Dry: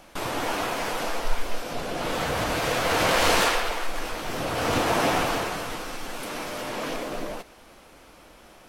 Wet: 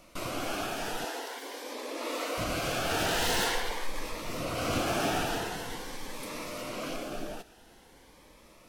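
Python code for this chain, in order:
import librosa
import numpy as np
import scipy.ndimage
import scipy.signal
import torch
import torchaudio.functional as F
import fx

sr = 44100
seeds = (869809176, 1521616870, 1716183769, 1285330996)

y = 10.0 ** (-16.5 / 20.0) * (np.abs((x / 10.0 ** (-16.5 / 20.0) + 3.0) % 4.0 - 2.0) - 1.0)
y = fx.brickwall_highpass(y, sr, low_hz=240.0, at=(1.04, 2.38))
y = fx.notch_cascade(y, sr, direction='rising', hz=0.46)
y = y * 10.0 ** (-4.0 / 20.0)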